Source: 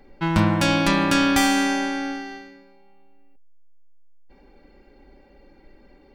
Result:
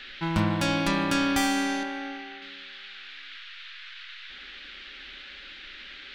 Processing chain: band noise 1400–3900 Hz -38 dBFS; 1.83–2.42 tone controls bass -8 dB, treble -10 dB; gain -6 dB

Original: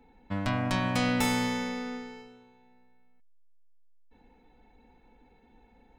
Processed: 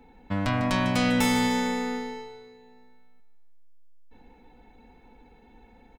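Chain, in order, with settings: in parallel at -1 dB: limiter -24.5 dBFS, peak gain reduction 10.5 dB; on the sum: feedback echo 0.15 s, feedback 48%, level -10.5 dB

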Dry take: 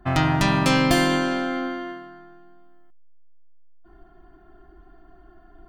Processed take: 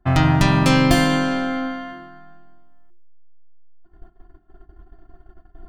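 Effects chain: gate -47 dBFS, range -16 dB; low shelf 190 Hz +8.5 dB; notches 50/100/150/200/250/300/350 Hz; gain +1.5 dB

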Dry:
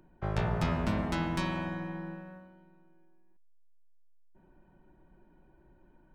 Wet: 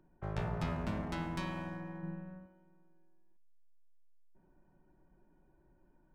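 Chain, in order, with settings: Wiener smoothing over 9 samples; 2.03–2.46 tone controls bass +9 dB, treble +5 dB; shoebox room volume 3700 m³, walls furnished, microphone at 0.3 m; gain -6.5 dB

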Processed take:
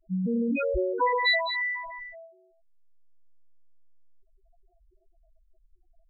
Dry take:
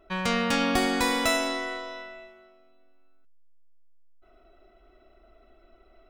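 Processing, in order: G.711 law mismatch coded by A; 0.57–2.14 comb 2 ms, depth 53%; loudest bins only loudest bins 2; gain +8 dB

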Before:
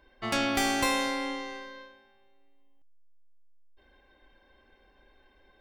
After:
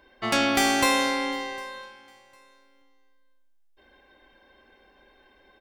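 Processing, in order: low shelf 80 Hz -11.5 dB; feedback echo 0.754 s, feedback 25%, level -24 dB; gain +5.5 dB

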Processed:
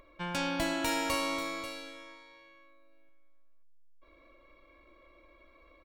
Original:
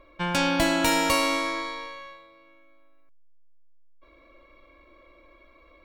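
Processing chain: upward compressor, threshold -44 dBFS; echo 0.539 s -12 dB; gain -9 dB

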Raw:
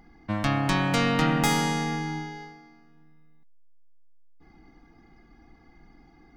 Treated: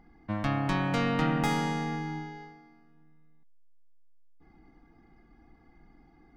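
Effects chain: high shelf 3800 Hz -11 dB; gain -3.5 dB

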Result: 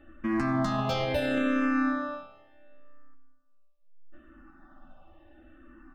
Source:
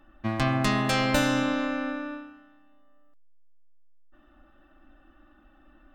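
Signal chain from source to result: high shelf 2800 Hz -10.5 dB; limiter -23 dBFS, peak gain reduction 11 dB; doubler 12 ms -6 dB; reverb, pre-delay 3 ms, DRR 12.5 dB; endless phaser -0.73 Hz; gain +6.5 dB

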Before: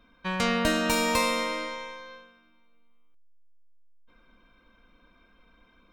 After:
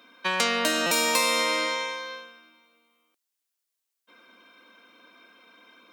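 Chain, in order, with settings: compressor 4:1, threshold -29 dBFS, peak gain reduction 8 dB; HPF 260 Hz 24 dB/oct; high shelf 2600 Hz +8.5 dB; stuck buffer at 0.86, samples 256, times 8; gain +6 dB

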